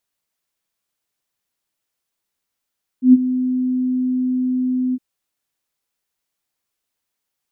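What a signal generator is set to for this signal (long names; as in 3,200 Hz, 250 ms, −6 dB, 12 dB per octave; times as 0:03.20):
note with an ADSR envelope sine 254 Hz, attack 113 ms, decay 32 ms, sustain −13.5 dB, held 1.92 s, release 43 ms −3 dBFS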